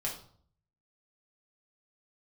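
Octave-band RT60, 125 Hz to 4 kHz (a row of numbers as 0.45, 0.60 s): 0.90, 0.70, 0.55, 0.55, 0.40, 0.40 s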